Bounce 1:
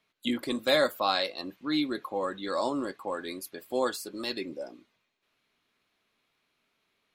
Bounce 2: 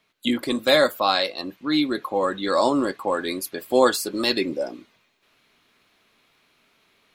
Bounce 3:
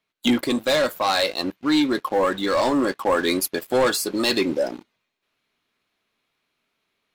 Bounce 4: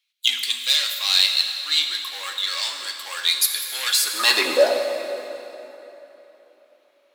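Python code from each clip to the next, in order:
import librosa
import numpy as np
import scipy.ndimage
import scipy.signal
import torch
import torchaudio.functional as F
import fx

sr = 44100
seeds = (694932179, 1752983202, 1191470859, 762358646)

y1 = fx.rider(x, sr, range_db=10, speed_s=2.0)
y1 = y1 * 10.0 ** (7.0 / 20.0)
y2 = fx.leveller(y1, sr, passes=3)
y2 = fx.rider(y2, sr, range_db=10, speed_s=0.5)
y2 = y2 * 10.0 ** (-7.5 / 20.0)
y3 = fx.filter_sweep_highpass(y2, sr, from_hz=3300.0, to_hz=610.0, start_s=3.81, end_s=4.53, q=1.4)
y3 = fx.rev_plate(y3, sr, seeds[0], rt60_s=3.5, hf_ratio=0.7, predelay_ms=0, drr_db=3.5)
y3 = y3 * 10.0 ** (5.0 / 20.0)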